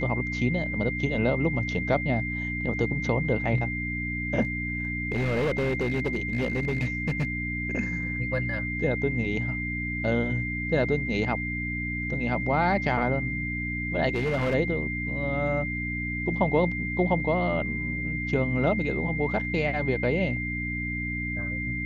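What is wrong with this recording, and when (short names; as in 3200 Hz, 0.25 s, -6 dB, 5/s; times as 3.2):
hum 60 Hz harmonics 5 -33 dBFS
tone 2100 Hz -31 dBFS
4.42–7.67 clipped -22 dBFS
14.13–14.55 clipped -22 dBFS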